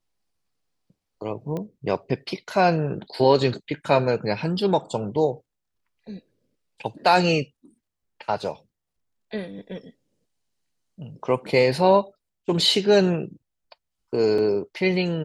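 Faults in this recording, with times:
1.57 pop -19 dBFS
14.38 gap 4 ms

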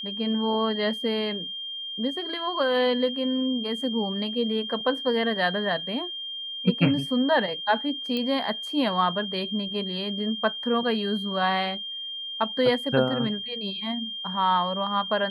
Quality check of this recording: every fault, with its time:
tone 3200 Hz -32 dBFS
8.17 pop -17 dBFS

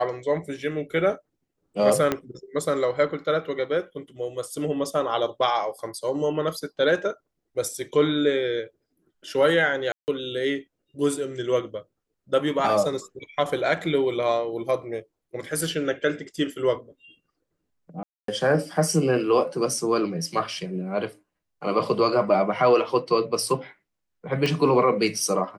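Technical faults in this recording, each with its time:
2.12 pop -9 dBFS
9.92–10.08 gap 0.159 s
18.03–18.28 gap 0.253 s
24.46 pop

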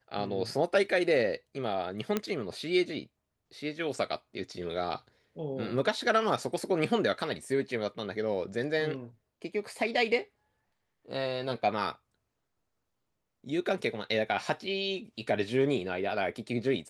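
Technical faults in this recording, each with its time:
2.17 pop -14 dBFS

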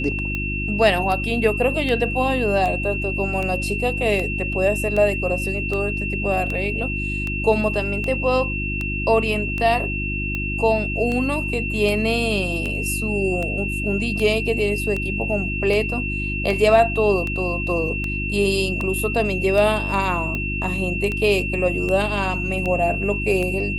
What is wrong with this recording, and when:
hum 50 Hz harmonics 7 -27 dBFS
tick 78 rpm -14 dBFS
tone 2700 Hz -26 dBFS

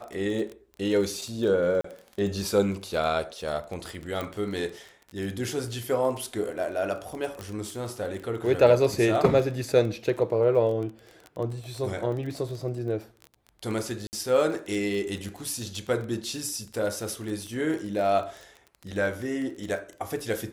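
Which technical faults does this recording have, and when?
crackle 22/s -32 dBFS
1.81–1.84 gap 34 ms
4.21 pop -18 dBFS
7.41 pop
14.07–14.13 gap 59 ms

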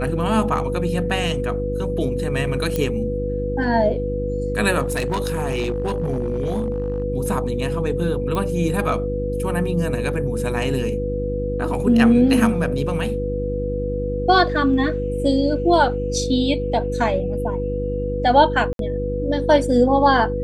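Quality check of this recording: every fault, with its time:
hum 50 Hz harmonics 7 -26 dBFS
tone 490 Hz -24 dBFS
2.76 pop -9 dBFS
4.84–7.04 clipped -17.5 dBFS
8.35 pop -13 dBFS
18.73–18.79 gap 62 ms

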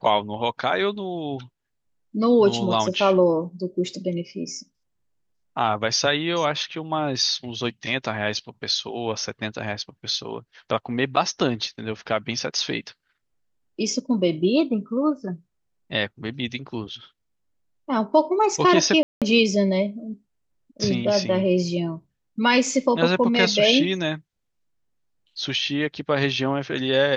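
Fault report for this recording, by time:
19.03–19.22 gap 0.187 s

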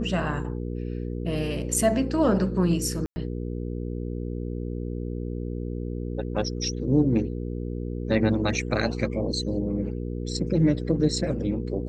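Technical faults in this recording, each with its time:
hum 60 Hz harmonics 8 -31 dBFS
3.06–3.16 gap 0.1 s

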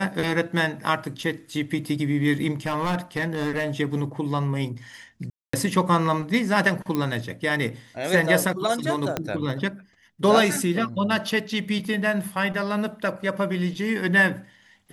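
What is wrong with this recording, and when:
2.66–3.7 clipped -20 dBFS
5.3–5.53 gap 0.234 s
6.95 pop -13 dBFS
9.17 pop -10 dBFS

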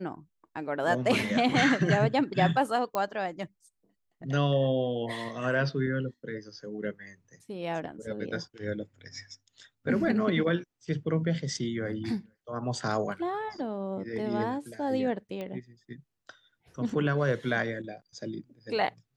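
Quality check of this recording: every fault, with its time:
2.95 pop -16 dBFS
15.41 pop -25 dBFS

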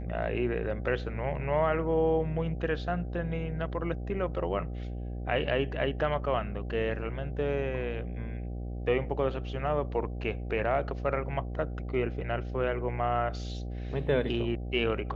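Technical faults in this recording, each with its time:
buzz 60 Hz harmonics 13 -36 dBFS

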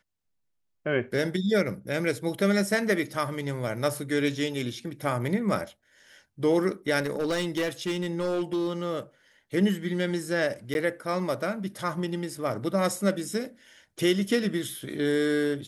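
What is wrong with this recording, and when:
6.99–8.98 clipped -23 dBFS
10.74–10.75 gap 11 ms

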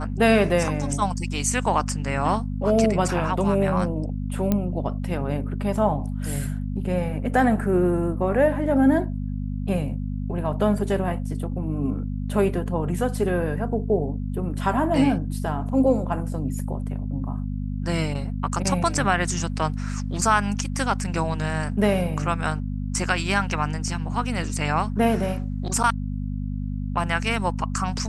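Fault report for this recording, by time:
hum 50 Hz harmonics 5 -28 dBFS
4.52 pop -9 dBFS

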